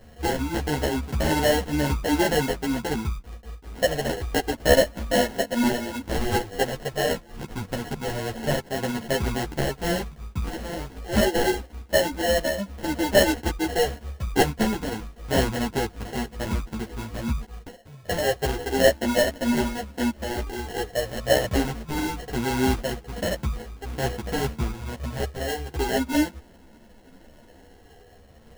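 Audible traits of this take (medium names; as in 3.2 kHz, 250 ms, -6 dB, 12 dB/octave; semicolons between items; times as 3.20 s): a buzz of ramps at a fixed pitch in blocks of 8 samples; phasing stages 12, 0.14 Hz, lowest notch 120–1200 Hz; aliases and images of a low sample rate 1.2 kHz, jitter 0%; a shimmering, thickened sound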